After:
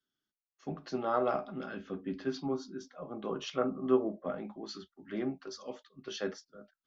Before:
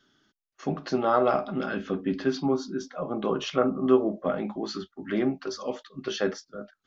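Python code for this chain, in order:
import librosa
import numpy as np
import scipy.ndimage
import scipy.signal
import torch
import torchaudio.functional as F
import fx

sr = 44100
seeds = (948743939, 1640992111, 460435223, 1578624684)

y = fx.band_widen(x, sr, depth_pct=40)
y = F.gain(torch.from_numpy(y), -9.0).numpy()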